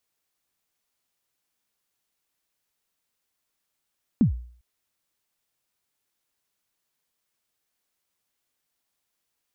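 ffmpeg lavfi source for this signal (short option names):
-f lavfi -i "aevalsrc='0.251*pow(10,-3*t/0.51)*sin(2*PI*(270*0.113/log(60/270)*(exp(log(60/270)*min(t,0.113)/0.113)-1)+60*max(t-0.113,0)))':d=0.4:s=44100"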